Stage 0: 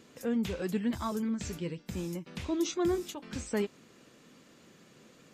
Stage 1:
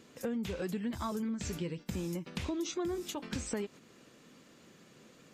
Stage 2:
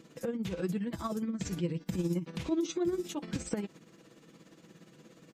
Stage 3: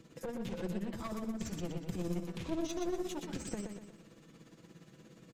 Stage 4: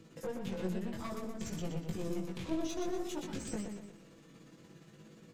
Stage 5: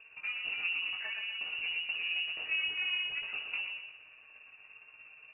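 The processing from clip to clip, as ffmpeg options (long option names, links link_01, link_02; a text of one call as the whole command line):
ffmpeg -i in.wav -filter_complex "[0:a]agate=range=-7dB:threshold=-46dB:ratio=16:detection=peak,asplit=2[link_01][link_02];[link_02]alimiter=level_in=2dB:limit=-24dB:level=0:latency=1:release=34,volume=-2dB,volume=-1.5dB[link_03];[link_01][link_03]amix=inputs=2:normalize=0,acompressor=threshold=-35dB:ratio=5,volume=1dB" out.wav
ffmpeg -i in.wav -af "equalizer=frequency=210:width_type=o:width=2.9:gain=5.5,aecho=1:1:6.1:0.51,tremolo=f=17:d=0.58" out.wav
ffmpeg -i in.wav -filter_complex "[0:a]acrossover=split=110[link_01][link_02];[link_01]acompressor=mode=upward:threshold=-53dB:ratio=2.5[link_03];[link_03][link_02]amix=inputs=2:normalize=0,aeval=exprs='clip(val(0),-1,0.0141)':channel_layout=same,aecho=1:1:122|244|366|488|610:0.531|0.218|0.0892|0.0366|0.015,volume=-3.5dB" out.wav
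ffmpeg -i in.wav -af "flanger=delay=18.5:depth=3.5:speed=0.57,volume=3.5dB" out.wav
ffmpeg -i in.wav -af "lowpass=frequency=2500:width_type=q:width=0.5098,lowpass=frequency=2500:width_type=q:width=0.6013,lowpass=frequency=2500:width_type=q:width=0.9,lowpass=frequency=2500:width_type=q:width=2.563,afreqshift=-2900,volume=1.5dB" out.wav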